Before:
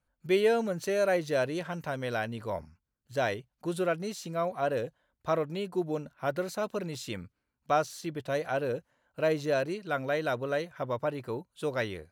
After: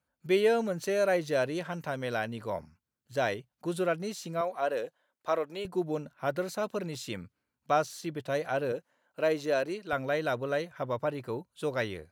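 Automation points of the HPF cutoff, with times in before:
100 Hz
from 4.41 s 360 Hz
from 5.65 s 88 Hz
from 8.72 s 220 Hz
from 9.93 s 60 Hz

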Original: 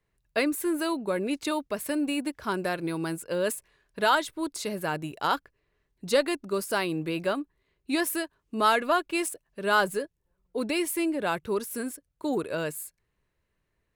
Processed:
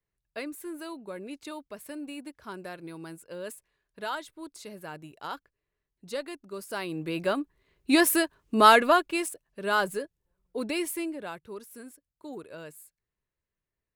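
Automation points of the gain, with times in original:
6.49 s -11 dB
7.19 s -0.5 dB
7.91 s +6 dB
8.78 s +6 dB
9.26 s -2.5 dB
10.88 s -2.5 dB
11.4 s -12.5 dB

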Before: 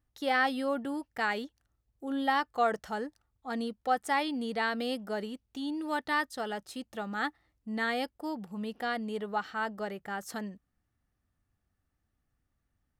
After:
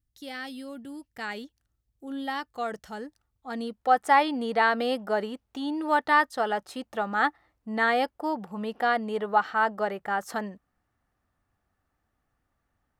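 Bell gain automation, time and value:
bell 910 Hz 2.7 oct
0.82 s -15 dB
1.29 s -5 dB
2.82 s -5 dB
3.54 s +1 dB
4.08 s +10.5 dB

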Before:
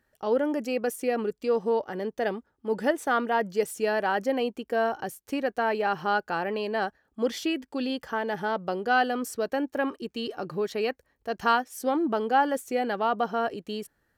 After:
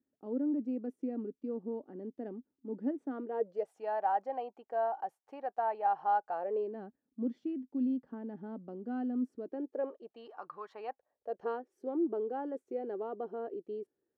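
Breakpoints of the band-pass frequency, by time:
band-pass, Q 4.7
3.1 s 270 Hz
3.76 s 790 Hz
6.28 s 790 Hz
6.82 s 250 Hz
9.29 s 250 Hz
10.54 s 1200 Hz
11.64 s 380 Hz

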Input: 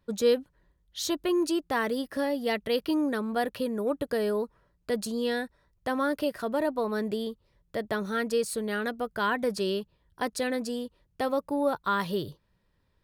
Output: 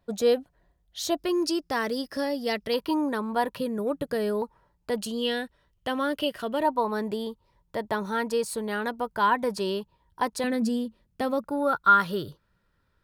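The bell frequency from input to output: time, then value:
bell +14 dB 0.28 oct
700 Hz
from 1.19 s 5200 Hz
from 2.74 s 970 Hz
from 3.57 s 160 Hz
from 4.42 s 880 Hz
from 4.98 s 3000 Hz
from 6.63 s 930 Hz
from 10.44 s 220 Hz
from 11.44 s 1400 Hz

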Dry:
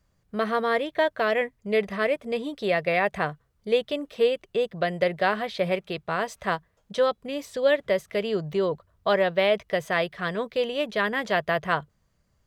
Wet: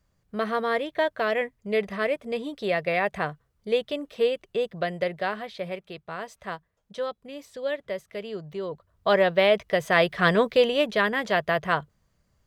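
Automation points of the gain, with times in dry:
4.74 s -1.5 dB
5.71 s -8 dB
8.63 s -8 dB
9.15 s +2 dB
9.79 s +2 dB
10.29 s +9 dB
11.18 s +0.5 dB

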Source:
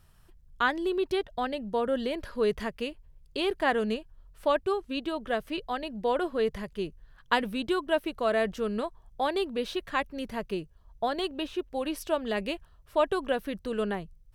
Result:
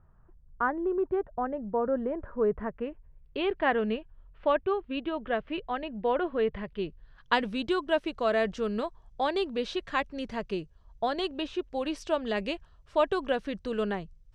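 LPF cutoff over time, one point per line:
LPF 24 dB/oct
2.55 s 1400 Hz
3.43 s 3000 Hz
6.57 s 3000 Hz
7.42 s 7300 Hz

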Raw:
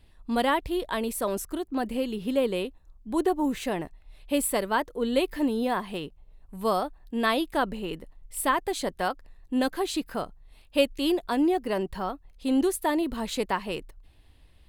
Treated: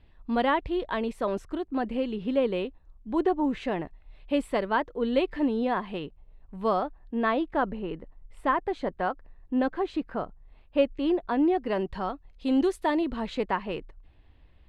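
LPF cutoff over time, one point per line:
6.66 s 2900 Hz
7.18 s 1800 Hz
11.17 s 1800 Hz
11.97 s 4300 Hz
12.87 s 4300 Hz
13.43 s 2500 Hz

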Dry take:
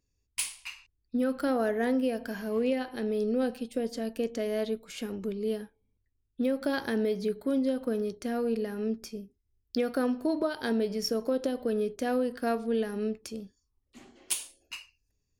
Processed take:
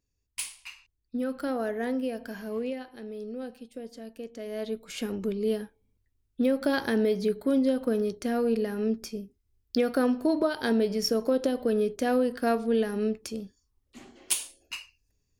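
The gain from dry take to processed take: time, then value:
2.53 s -2.5 dB
2.94 s -9 dB
4.32 s -9 dB
4.94 s +3.5 dB

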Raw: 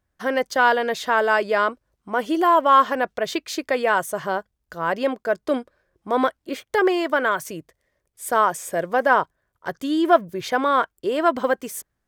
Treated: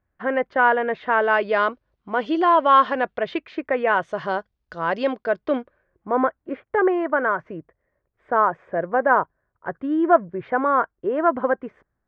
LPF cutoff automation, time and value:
LPF 24 dB/oct
0.99 s 2300 Hz
1.64 s 4200 Hz
2.9 s 4200 Hz
3.7 s 2100 Hz
4.27 s 4900 Hz
5.04 s 4900 Hz
6.19 s 1800 Hz

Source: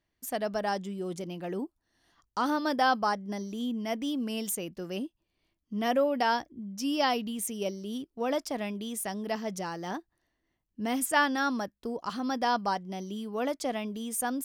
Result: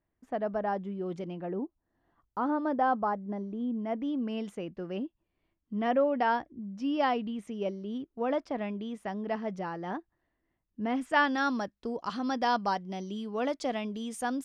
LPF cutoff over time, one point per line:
0.76 s 1400 Hz
1.22 s 2800 Hz
1.55 s 1100 Hz
3.73 s 1100 Hz
4.33 s 2100 Hz
10.93 s 2100 Hz
11.48 s 5400 Hz

